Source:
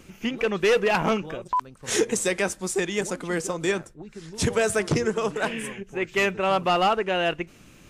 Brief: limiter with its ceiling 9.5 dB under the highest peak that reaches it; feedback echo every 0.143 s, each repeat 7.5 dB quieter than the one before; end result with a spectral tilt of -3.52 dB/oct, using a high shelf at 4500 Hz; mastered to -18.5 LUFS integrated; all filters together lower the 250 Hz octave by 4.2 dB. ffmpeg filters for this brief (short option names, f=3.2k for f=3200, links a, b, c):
-af "equalizer=f=250:t=o:g=-6.5,highshelf=f=4.5k:g=-4.5,alimiter=limit=-22dB:level=0:latency=1,aecho=1:1:143|286|429|572|715:0.422|0.177|0.0744|0.0312|0.0131,volume=12.5dB"